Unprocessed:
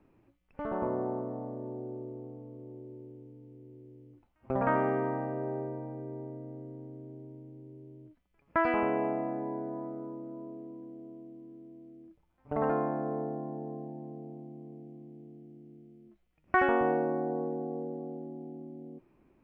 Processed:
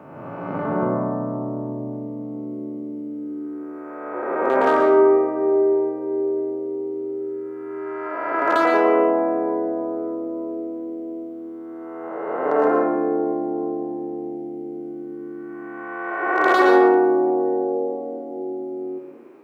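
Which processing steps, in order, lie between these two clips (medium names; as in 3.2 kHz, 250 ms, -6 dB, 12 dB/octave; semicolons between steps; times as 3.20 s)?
reverse spectral sustain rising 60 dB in 1.60 s; high-pass 96 Hz 12 dB/octave; peaking EQ 1.4 kHz +3.5 dB 0.91 oct; hard clipper -17 dBFS, distortion -18 dB; in parallel at +1 dB: compression, threshold -43 dBFS, peak gain reduction 20.5 dB; on the sum: high-pass sweep 130 Hz -> 390 Hz, 1.87–3.92 s; on a send at -3 dB: reverberation RT60 0.70 s, pre-delay 107 ms; on the sum: trim +3.5 dB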